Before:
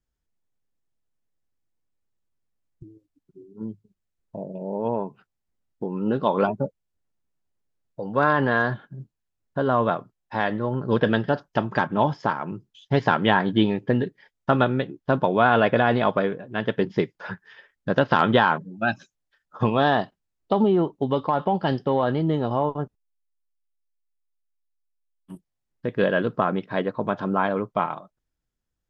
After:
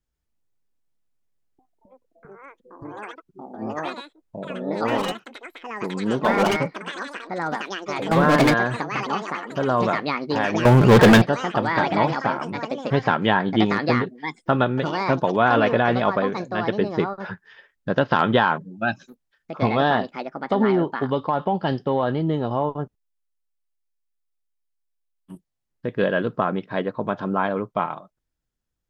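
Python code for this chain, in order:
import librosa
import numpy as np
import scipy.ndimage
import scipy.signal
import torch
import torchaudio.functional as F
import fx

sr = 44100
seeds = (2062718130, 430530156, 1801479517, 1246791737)

y = fx.leveller(x, sr, passes=5, at=(10.65, 11.22))
y = fx.echo_pitch(y, sr, ms=134, semitones=5, count=3, db_per_echo=-6.0)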